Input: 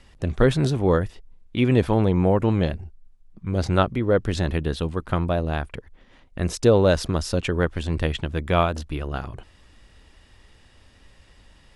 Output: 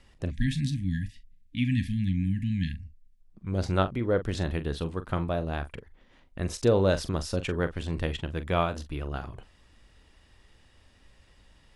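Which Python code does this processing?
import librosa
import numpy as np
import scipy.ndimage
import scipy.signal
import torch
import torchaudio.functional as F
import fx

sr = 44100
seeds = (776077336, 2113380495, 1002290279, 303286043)

y = fx.doubler(x, sr, ms=42.0, db=-12)
y = fx.spec_erase(y, sr, start_s=0.31, length_s=2.89, low_hz=300.0, high_hz=1600.0)
y = y * librosa.db_to_amplitude(-6.0)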